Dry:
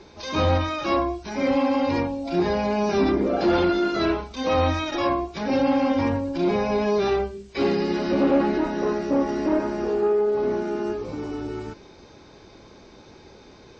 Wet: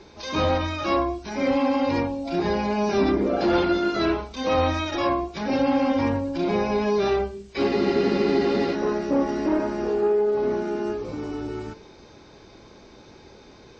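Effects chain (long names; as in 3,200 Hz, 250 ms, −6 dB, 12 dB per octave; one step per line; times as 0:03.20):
hum removal 89.07 Hz, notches 14
frozen spectrum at 0:07.70, 1.04 s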